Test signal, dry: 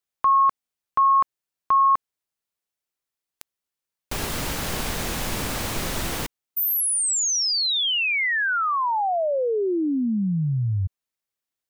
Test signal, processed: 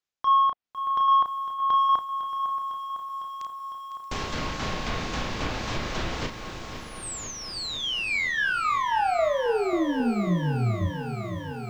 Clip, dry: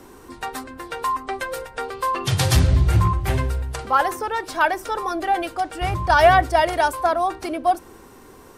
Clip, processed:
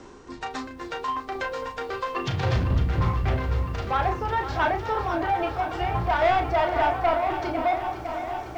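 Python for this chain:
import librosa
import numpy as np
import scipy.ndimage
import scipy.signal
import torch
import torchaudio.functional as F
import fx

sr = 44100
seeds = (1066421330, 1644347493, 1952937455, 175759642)

p1 = scipy.signal.sosfilt(scipy.signal.butter(8, 7300.0, 'lowpass', fs=sr, output='sos'), x)
p2 = p1 + fx.echo_single(p1, sr, ms=628, db=-15.0, dry=0)
p3 = fx.dynamic_eq(p2, sr, hz=720.0, q=4.2, threshold_db=-35.0, ratio=4.0, max_db=4)
p4 = 10.0 ** (-17.5 / 20.0) * np.tanh(p3 / 10.0 ** (-17.5 / 20.0))
p5 = fx.tremolo_shape(p4, sr, shape='saw_down', hz=3.7, depth_pct=50)
p6 = fx.doubler(p5, sr, ms=34.0, db=-6.0)
p7 = fx.env_lowpass_down(p6, sr, base_hz=2700.0, full_db=-23.0)
y = fx.echo_crushed(p7, sr, ms=504, feedback_pct=80, bits=9, wet_db=-11.0)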